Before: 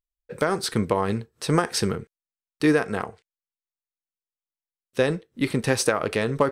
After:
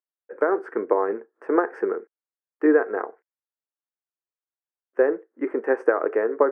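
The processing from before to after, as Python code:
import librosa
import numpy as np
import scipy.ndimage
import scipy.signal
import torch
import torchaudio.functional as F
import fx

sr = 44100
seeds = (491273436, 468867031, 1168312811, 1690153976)

y = fx.dynamic_eq(x, sr, hz=420.0, q=2.0, threshold_db=-35.0, ratio=4.0, max_db=6)
y = scipy.signal.sosfilt(scipy.signal.ellip(3, 1.0, 40, [310.0, 1700.0], 'bandpass', fs=sr, output='sos'), y)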